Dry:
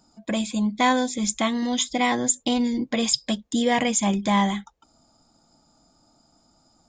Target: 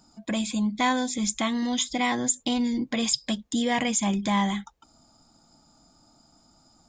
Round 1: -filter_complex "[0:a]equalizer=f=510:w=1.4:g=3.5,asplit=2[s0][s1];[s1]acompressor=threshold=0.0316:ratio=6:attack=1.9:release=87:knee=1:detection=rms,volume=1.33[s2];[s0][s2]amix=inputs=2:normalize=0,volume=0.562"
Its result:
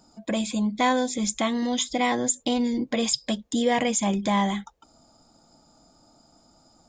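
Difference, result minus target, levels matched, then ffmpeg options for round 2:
500 Hz band +5.0 dB
-filter_complex "[0:a]equalizer=f=510:w=1.4:g=-4,asplit=2[s0][s1];[s1]acompressor=threshold=0.0316:ratio=6:attack=1.9:release=87:knee=1:detection=rms,volume=1.33[s2];[s0][s2]amix=inputs=2:normalize=0,volume=0.562"

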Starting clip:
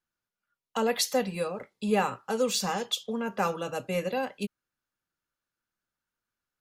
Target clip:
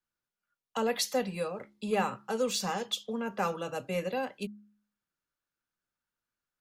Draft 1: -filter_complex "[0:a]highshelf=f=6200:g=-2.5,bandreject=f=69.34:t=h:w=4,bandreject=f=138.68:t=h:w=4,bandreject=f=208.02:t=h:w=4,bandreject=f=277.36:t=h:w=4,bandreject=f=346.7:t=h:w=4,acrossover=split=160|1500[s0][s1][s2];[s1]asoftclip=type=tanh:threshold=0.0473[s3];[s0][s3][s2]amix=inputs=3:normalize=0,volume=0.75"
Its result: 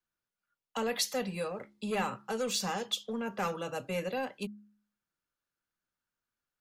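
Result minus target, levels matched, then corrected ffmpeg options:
saturation: distortion +17 dB
-filter_complex "[0:a]highshelf=f=6200:g=-2.5,bandreject=f=69.34:t=h:w=4,bandreject=f=138.68:t=h:w=4,bandreject=f=208.02:t=h:w=4,bandreject=f=277.36:t=h:w=4,bandreject=f=346.7:t=h:w=4,acrossover=split=160|1500[s0][s1][s2];[s1]asoftclip=type=tanh:threshold=0.188[s3];[s0][s3][s2]amix=inputs=3:normalize=0,volume=0.75"

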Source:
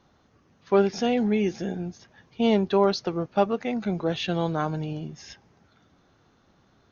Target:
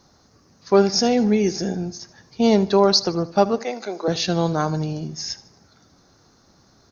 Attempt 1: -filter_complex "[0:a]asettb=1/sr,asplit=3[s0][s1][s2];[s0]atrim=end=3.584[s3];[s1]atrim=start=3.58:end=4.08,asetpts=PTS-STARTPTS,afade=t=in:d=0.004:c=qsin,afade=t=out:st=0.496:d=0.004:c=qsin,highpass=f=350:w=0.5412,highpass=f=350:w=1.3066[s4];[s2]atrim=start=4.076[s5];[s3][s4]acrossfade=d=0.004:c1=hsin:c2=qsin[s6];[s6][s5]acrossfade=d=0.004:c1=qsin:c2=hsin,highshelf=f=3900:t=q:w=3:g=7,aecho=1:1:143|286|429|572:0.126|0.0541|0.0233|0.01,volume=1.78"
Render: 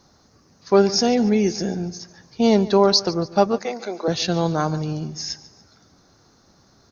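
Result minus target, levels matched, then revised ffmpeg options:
echo 66 ms late
-filter_complex "[0:a]asettb=1/sr,asplit=3[s0][s1][s2];[s0]atrim=end=3.584[s3];[s1]atrim=start=3.58:end=4.08,asetpts=PTS-STARTPTS,afade=t=in:d=0.004:c=qsin,afade=t=out:st=0.496:d=0.004:c=qsin,highpass=f=350:w=0.5412,highpass=f=350:w=1.3066[s4];[s2]atrim=start=4.076[s5];[s3][s4]acrossfade=d=0.004:c1=hsin:c2=qsin[s6];[s6][s5]acrossfade=d=0.004:c1=qsin:c2=hsin,highshelf=f=3900:t=q:w=3:g=7,aecho=1:1:77|154|231|308:0.126|0.0541|0.0233|0.01,volume=1.78"

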